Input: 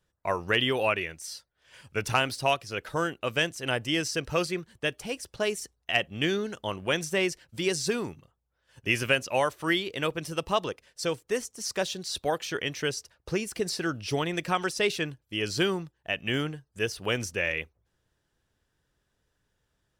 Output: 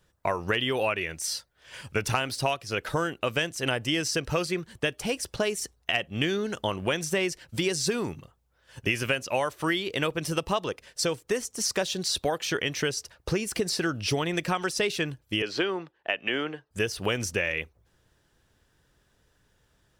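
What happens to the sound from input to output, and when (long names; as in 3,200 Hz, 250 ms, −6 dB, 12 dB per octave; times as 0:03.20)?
0:15.42–0:16.71: three-way crossover with the lows and the highs turned down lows −21 dB, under 270 Hz, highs −20 dB, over 3,900 Hz
whole clip: downward compressor 4 to 1, threshold −34 dBFS; level +9 dB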